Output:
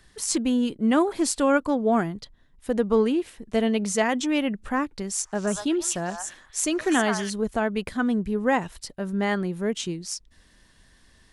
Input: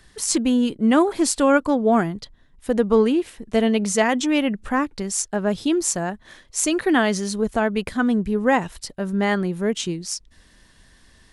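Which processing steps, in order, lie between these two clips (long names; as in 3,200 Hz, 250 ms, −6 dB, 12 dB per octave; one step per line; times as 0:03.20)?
0:05.11–0:07.30: echo through a band-pass that steps 120 ms, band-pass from 1,100 Hz, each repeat 1.4 octaves, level −1 dB
level −4 dB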